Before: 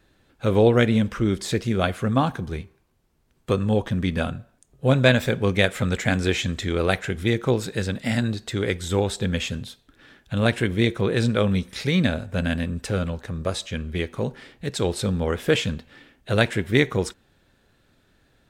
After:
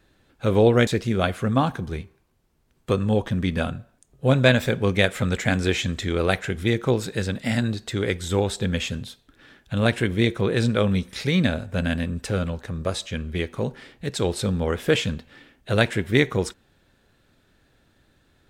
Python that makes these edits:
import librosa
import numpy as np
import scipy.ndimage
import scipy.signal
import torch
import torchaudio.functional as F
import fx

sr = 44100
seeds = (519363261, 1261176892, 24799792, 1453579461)

y = fx.edit(x, sr, fx.cut(start_s=0.87, length_s=0.6), tone=tone)